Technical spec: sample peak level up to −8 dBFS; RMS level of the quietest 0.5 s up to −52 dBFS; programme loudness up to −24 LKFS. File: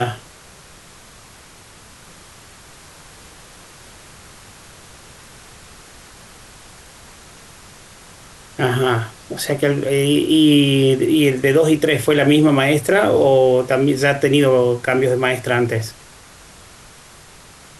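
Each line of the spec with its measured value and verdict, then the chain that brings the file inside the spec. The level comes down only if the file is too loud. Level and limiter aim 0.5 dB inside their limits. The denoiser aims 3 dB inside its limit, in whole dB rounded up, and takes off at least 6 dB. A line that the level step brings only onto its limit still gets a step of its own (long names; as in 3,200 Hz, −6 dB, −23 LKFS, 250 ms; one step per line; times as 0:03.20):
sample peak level −4.5 dBFS: out of spec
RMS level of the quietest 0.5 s −44 dBFS: out of spec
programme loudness −15.5 LKFS: out of spec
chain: level −9 dB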